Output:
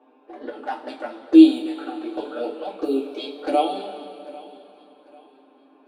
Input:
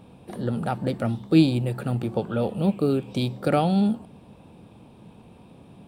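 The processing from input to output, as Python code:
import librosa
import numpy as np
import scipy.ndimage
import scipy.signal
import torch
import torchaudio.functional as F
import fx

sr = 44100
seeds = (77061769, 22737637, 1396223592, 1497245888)

p1 = scipy.signal.sosfilt(scipy.signal.butter(8, 280.0, 'highpass', fs=sr, output='sos'), x)
p2 = fx.env_lowpass(p1, sr, base_hz=1700.0, full_db=-19.5)
p3 = p2 + 0.49 * np.pad(p2, (int(6.8 * sr / 1000.0), 0))[:len(p2)]
p4 = fx.env_flanger(p3, sr, rest_ms=8.3, full_db=-19.5)
p5 = p4 + fx.echo_feedback(p4, sr, ms=795, feedback_pct=33, wet_db=-20.5, dry=0)
p6 = fx.rev_double_slope(p5, sr, seeds[0], early_s=0.22, late_s=3.2, knee_db=-19, drr_db=-3.0)
y = F.gain(torch.from_numpy(p6), -3.0).numpy()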